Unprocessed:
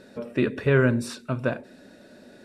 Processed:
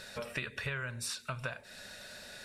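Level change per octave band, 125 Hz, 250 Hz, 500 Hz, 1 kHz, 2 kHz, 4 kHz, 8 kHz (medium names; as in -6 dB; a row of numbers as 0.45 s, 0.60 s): -16.0 dB, -23.5 dB, -19.5 dB, -8.5 dB, -8.0 dB, 0.0 dB, +1.5 dB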